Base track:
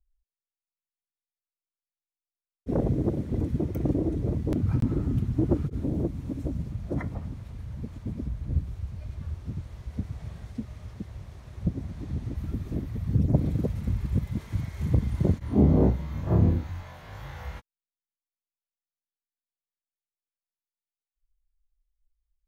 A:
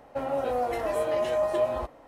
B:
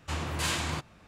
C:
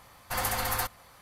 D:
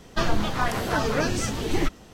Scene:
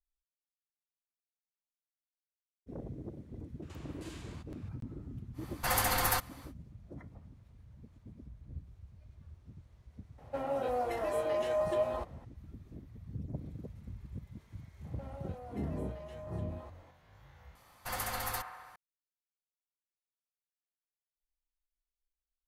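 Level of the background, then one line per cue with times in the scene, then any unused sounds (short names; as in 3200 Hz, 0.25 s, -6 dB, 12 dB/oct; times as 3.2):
base track -18 dB
3.62 add B -4.5 dB + compressor 3:1, threshold -51 dBFS
5.33 add C, fades 0.10 s
10.18 add A -5.5 dB
14.84 add A -8.5 dB + compressor 5:1, threshold -38 dBFS
17.55 replace with C -7.5 dB + band-limited delay 67 ms, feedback 75%, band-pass 1000 Hz, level -8.5 dB
not used: D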